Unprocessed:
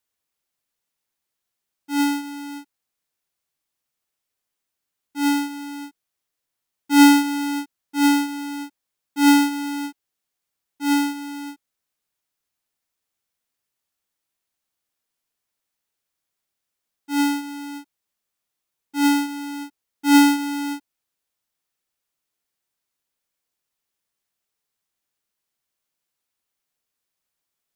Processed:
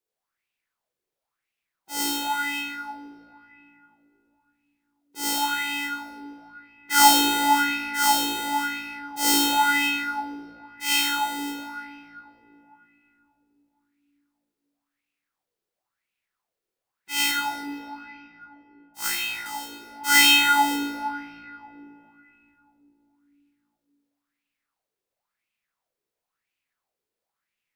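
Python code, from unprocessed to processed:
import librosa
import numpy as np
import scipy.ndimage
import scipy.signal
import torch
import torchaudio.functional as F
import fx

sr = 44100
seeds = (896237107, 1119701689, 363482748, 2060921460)

y = fx.spec_clip(x, sr, under_db=28)
y = fx.power_curve(y, sr, exponent=2.0, at=(17.31, 19.46))
y = fx.room_shoebox(y, sr, seeds[0], volume_m3=170.0, walls='hard', distance_m=0.72)
y = fx.bell_lfo(y, sr, hz=0.96, low_hz=400.0, high_hz=2600.0, db=17)
y = y * librosa.db_to_amplitude(-10.0)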